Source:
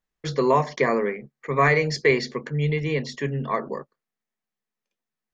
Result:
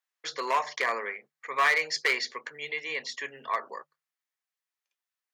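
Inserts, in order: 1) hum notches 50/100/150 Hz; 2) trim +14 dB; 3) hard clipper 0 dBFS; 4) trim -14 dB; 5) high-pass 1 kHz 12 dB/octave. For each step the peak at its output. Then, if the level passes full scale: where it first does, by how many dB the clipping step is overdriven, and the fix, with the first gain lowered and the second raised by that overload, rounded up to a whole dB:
-7.0 dBFS, +7.0 dBFS, 0.0 dBFS, -14.0 dBFS, -12.0 dBFS; step 2, 7.0 dB; step 2 +7 dB, step 4 -7 dB

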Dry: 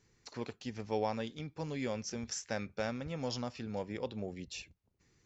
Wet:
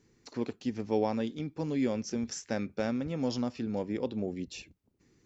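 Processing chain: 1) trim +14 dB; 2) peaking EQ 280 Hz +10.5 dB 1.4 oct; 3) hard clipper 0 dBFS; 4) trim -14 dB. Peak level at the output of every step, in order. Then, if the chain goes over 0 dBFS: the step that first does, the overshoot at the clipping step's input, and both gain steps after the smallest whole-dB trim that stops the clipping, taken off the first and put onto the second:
-6.5 dBFS, -2.0 dBFS, -2.0 dBFS, -16.0 dBFS; nothing clips

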